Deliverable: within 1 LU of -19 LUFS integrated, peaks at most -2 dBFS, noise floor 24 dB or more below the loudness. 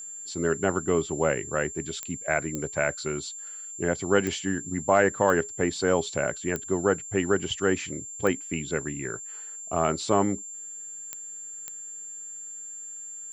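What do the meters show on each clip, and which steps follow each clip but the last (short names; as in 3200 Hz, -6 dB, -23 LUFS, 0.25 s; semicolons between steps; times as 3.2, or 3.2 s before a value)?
clicks 8; steady tone 7300 Hz; tone level -37 dBFS; loudness -28.0 LUFS; peak -6.5 dBFS; loudness target -19.0 LUFS
-> de-click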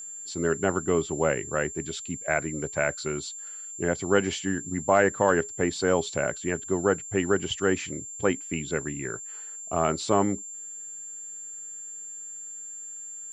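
clicks 0; steady tone 7300 Hz; tone level -37 dBFS
-> notch 7300 Hz, Q 30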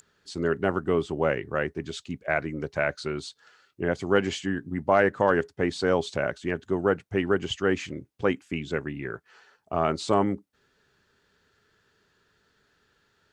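steady tone none; loudness -27.5 LUFS; peak -6.5 dBFS; loudness target -19.0 LUFS
-> gain +8.5 dB; limiter -2 dBFS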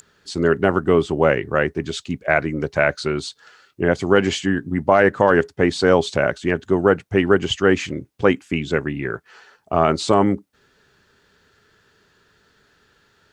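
loudness -19.5 LUFS; peak -2.0 dBFS; noise floor -60 dBFS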